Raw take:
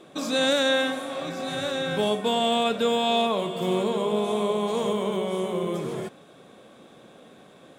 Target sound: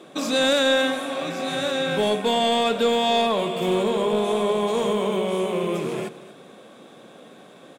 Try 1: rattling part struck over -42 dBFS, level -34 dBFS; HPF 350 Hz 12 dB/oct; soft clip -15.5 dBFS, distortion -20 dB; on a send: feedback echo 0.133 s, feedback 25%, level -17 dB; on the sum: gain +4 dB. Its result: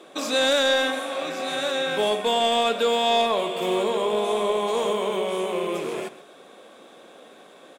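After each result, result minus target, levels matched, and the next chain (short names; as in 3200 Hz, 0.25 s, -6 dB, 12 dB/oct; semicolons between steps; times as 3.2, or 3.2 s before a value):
echo 0.101 s early; 125 Hz band -8.5 dB
rattling part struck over -42 dBFS, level -34 dBFS; HPF 350 Hz 12 dB/oct; soft clip -15.5 dBFS, distortion -20 dB; on a send: feedback echo 0.234 s, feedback 25%, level -17 dB; on the sum: gain +4 dB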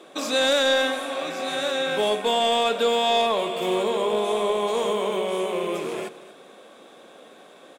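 125 Hz band -8.5 dB
rattling part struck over -42 dBFS, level -34 dBFS; HPF 150 Hz 12 dB/oct; soft clip -15.5 dBFS, distortion -20 dB; on a send: feedback echo 0.234 s, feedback 25%, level -17 dB; on the sum: gain +4 dB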